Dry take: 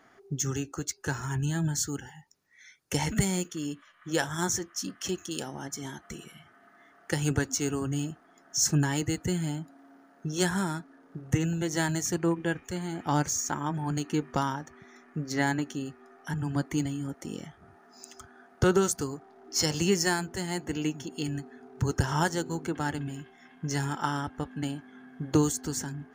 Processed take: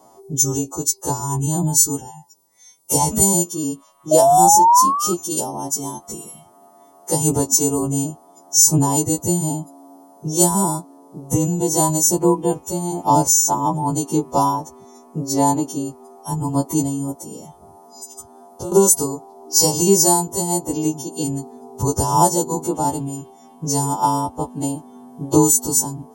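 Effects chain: partials quantised in pitch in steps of 2 st; 4.11–5.14 s: painted sound rise 610–1300 Hz -26 dBFS; 17.12–18.72 s: compression 3:1, threshold -42 dBFS, peak gain reduction 17 dB; FFT filter 130 Hz 0 dB, 1 kHz +7 dB, 1.6 kHz -28 dB, 3 kHz -14 dB, 9.5 kHz +4 dB; loudness maximiser +9 dB; trim -1 dB

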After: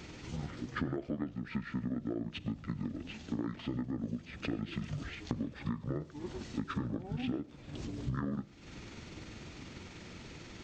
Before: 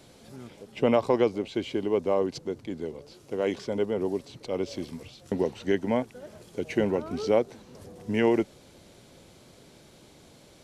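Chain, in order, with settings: rotating-head pitch shifter -9 st; compression 16:1, threshold -39 dBFS, peak gain reduction 22 dB; on a send: reverberation, pre-delay 37 ms, DRR 18 dB; on the sum: trim +6.5 dB

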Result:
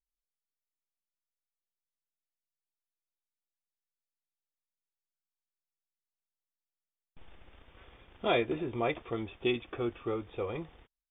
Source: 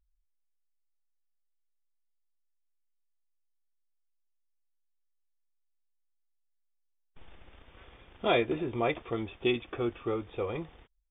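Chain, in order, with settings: gate -56 dBFS, range -18 dB; trim -2 dB

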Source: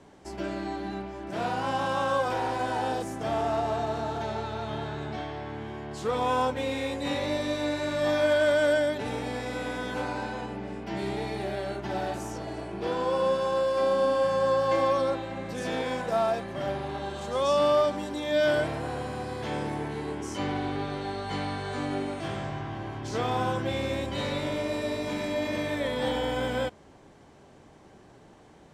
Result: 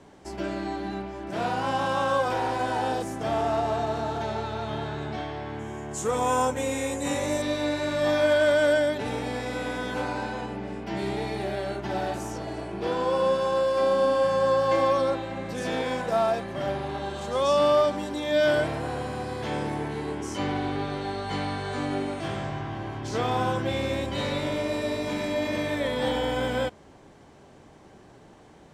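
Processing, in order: 5.59–7.42 s: resonant high shelf 5.6 kHz +7.5 dB, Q 3; trim +2 dB

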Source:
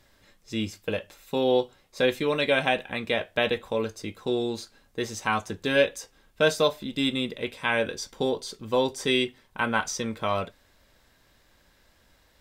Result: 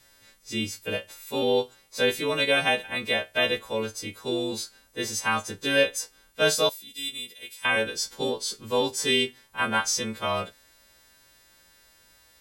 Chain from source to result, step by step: partials quantised in pitch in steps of 2 st; 6.69–7.65 s: pre-emphasis filter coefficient 0.9; trim -1 dB

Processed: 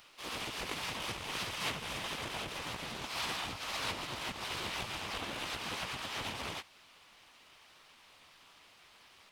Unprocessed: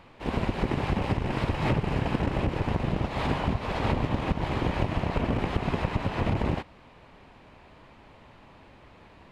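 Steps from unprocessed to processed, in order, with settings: harmony voices +3 st 0 dB, +4 st -4 dB; pre-emphasis filter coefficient 0.97; trim +4 dB

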